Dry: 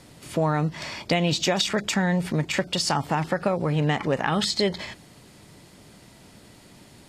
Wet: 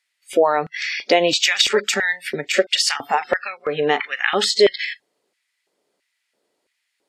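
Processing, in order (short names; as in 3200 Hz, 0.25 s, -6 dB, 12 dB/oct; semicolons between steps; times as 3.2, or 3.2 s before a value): spectral noise reduction 28 dB; LFO high-pass square 1.5 Hz 440–2000 Hz; gain +6 dB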